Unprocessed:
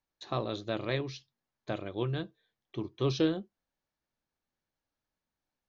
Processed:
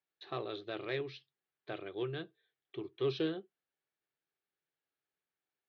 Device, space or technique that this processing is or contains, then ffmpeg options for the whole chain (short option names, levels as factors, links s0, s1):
overdrive pedal into a guitar cabinet: -filter_complex "[0:a]asplit=2[s0][s1];[s1]highpass=f=720:p=1,volume=3.55,asoftclip=type=tanh:threshold=0.168[s2];[s0][s2]amix=inputs=2:normalize=0,lowpass=f=6000:p=1,volume=0.501,highpass=100,equalizer=f=150:t=q:w=4:g=5,equalizer=f=220:t=q:w=4:g=-9,equalizer=f=400:t=q:w=4:g=8,equalizer=f=570:t=q:w=4:g=-5,equalizer=f=980:t=q:w=4:g=-8,lowpass=f=3900:w=0.5412,lowpass=f=3900:w=1.3066,volume=0.422"